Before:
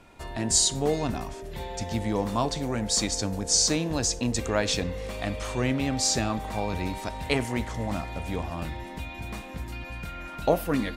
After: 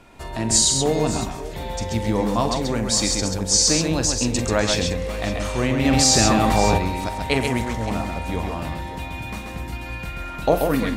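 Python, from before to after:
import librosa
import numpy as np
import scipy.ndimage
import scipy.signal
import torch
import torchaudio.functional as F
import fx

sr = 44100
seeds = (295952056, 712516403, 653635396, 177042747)

p1 = x + fx.echo_multitap(x, sr, ms=(44, 134, 563), db=(-11.0, -4.5, -15.5), dry=0)
p2 = fx.env_flatten(p1, sr, amount_pct=70, at=(5.84, 6.77), fade=0.02)
y = p2 * librosa.db_to_amplitude(4.0)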